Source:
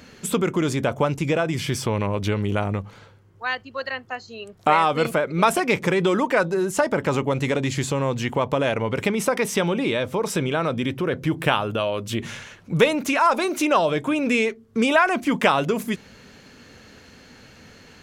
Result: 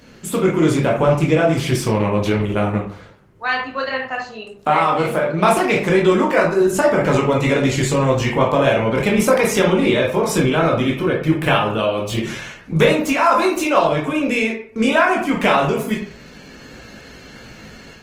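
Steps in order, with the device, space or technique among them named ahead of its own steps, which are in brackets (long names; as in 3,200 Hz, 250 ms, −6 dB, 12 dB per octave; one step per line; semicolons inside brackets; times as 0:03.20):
0:01.06–0:02.12: noise gate −31 dBFS, range −41 dB
speakerphone in a meeting room (convolution reverb RT60 0.55 s, pre-delay 14 ms, DRR −2 dB; automatic gain control gain up to 5.5 dB; level −1 dB; Opus 20 kbit/s 48,000 Hz)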